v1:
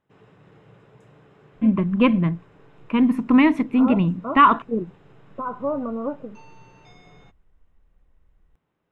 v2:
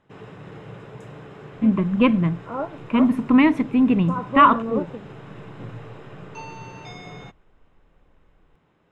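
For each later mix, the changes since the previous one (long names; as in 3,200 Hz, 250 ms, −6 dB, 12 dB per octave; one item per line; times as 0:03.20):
second voice: entry −1.30 s
background +12.0 dB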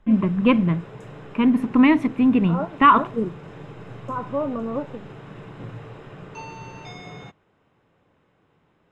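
first voice: entry −1.55 s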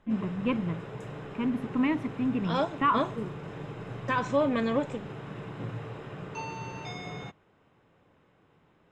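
first voice −11.5 dB
second voice: remove linear-phase brick-wall low-pass 1,500 Hz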